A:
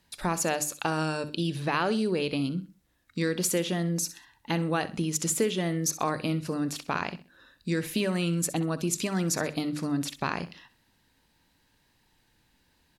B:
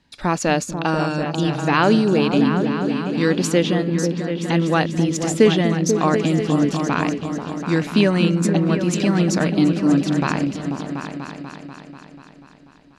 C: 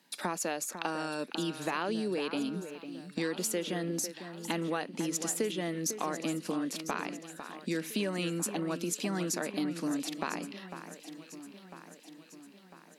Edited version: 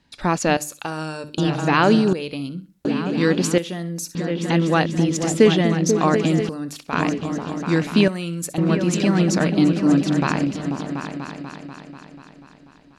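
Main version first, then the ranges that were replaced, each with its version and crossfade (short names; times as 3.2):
B
0.57–1.38 from A
2.13–2.85 from A
3.58–4.15 from A
6.49–6.93 from A
8.08–8.58 from A
not used: C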